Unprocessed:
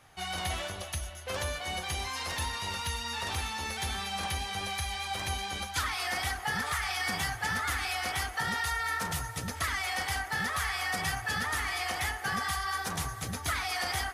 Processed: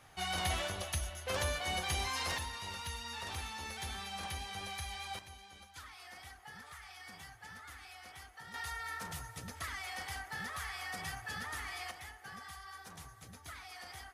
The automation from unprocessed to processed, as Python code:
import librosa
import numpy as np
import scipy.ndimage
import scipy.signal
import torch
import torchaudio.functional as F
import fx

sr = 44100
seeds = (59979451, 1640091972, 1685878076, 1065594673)

y = fx.gain(x, sr, db=fx.steps((0.0, -1.0), (2.38, -8.0), (5.19, -19.5), (8.54, -10.0), (11.91, -17.0)))